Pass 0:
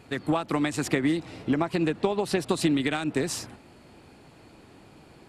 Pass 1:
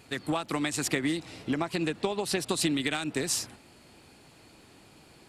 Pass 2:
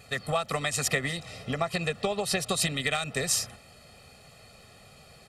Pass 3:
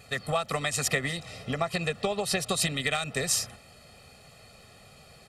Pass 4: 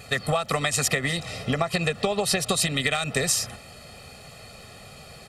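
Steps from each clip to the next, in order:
high shelf 2500 Hz +10.5 dB; gain -5 dB
comb 1.6 ms, depth 98%
nothing audible
compressor, threshold -28 dBFS, peak gain reduction 7 dB; gain +8 dB

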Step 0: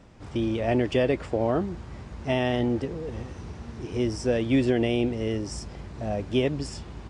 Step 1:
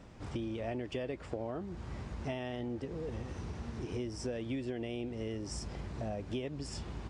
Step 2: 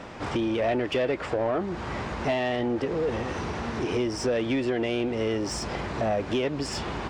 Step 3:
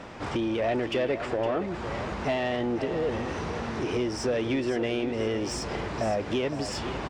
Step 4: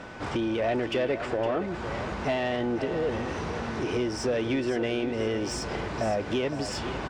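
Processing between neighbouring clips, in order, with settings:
compressor 6:1, threshold -34 dBFS, peak gain reduction 15.5 dB; gain -1.5 dB
overdrive pedal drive 19 dB, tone 2300 Hz, clips at -22.5 dBFS; gain +7.5 dB
feedback echo 0.513 s, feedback 39%, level -11 dB; gain -1.5 dB
whine 1500 Hz -48 dBFS

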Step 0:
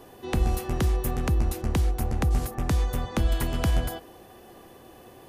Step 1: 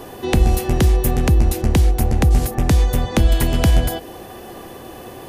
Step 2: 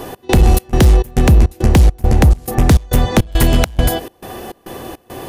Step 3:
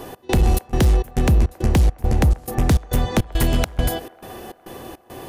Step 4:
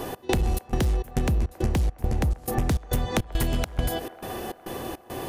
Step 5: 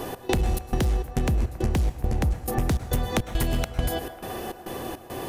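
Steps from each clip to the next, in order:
dynamic EQ 1200 Hz, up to -6 dB, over -51 dBFS, Q 1.9; in parallel at -1.5 dB: compressor, threshold -33 dBFS, peak gain reduction 14.5 dB; on the sum: gain +8 dB
hard clip -10.5 dBFS, distortion -16 dB; step gate "x.xx.xx.x" 103 bpm -24 dB; gain +6.5 dB
band-limited delay 0.137 s, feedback 78%, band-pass 900 Hz, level -21 dB; gain -6.5 dB
compressor, threshold -24 dBFS, peak gain reduction 11 dB; gain +2.5 dB
plate-style reverb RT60 0.64 s, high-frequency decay 0.75×, pre-delay 95 ms, DRR 12.5 dB

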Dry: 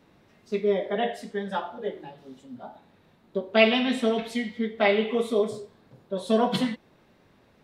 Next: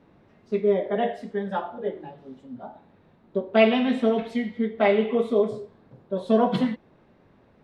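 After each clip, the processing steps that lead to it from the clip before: LPF 1300 Hz 6 dB/oct; gain +3 dB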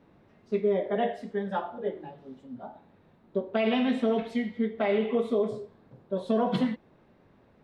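limiter -14 dBFS, peak gain reduction 9.5 dB; gain -2.5 dB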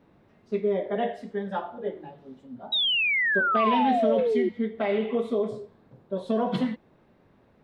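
painted sound fall, 2.72–4.49, 350–3900 Hz -24 dBFS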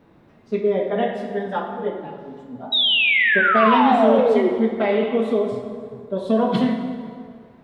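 plate-style reverb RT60 2.1 s, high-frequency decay 0.7×, DRR 4 dB; gain +5.5 dB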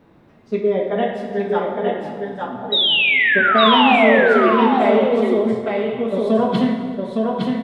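echo 0.861 s -3.5 dB; gain +1.5 dB

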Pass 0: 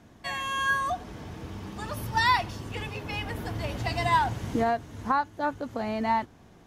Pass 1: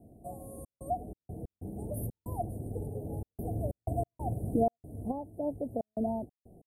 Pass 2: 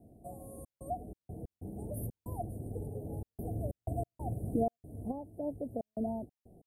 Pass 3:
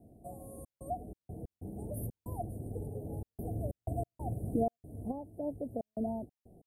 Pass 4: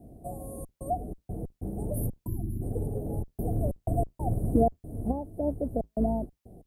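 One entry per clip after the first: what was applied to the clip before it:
Chebyshev band-stop 720–8900 Hz, order 5; step gate "xxxx.xx.x.xxx.xx" 93 bpm -60 dB
dynamic EQ 1100 Hz, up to -5 dB, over -48 dBFS, Q 1.2; gain -2.5 dB
nothing audible
octaver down 2 oct, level -3 dB; spectral gain 2.27–2.62, 390–10000 Hz -23 dB; gain +7.5 dB

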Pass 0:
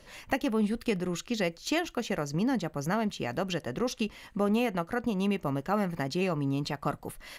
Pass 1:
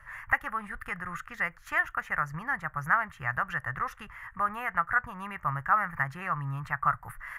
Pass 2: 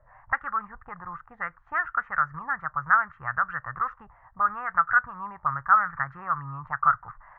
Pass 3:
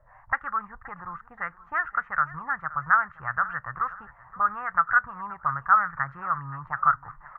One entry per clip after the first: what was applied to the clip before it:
EQ curve 130 Hz 0 dB, 220 Hz -23 dB, 440 Hz -23 dB, 1200 Hz +9 dB, 1800 Hz +10 dB, 2500 Hz -9 dB, 4100 Hz -26 dB, 11000 Hz -8 dB; gain +2.5 dB
envelope low-pass 600–1400 Hz up, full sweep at -28 dBFS; gain -4.5 dB
feedback echo 0.524 s, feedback 39%, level -18.5 dB

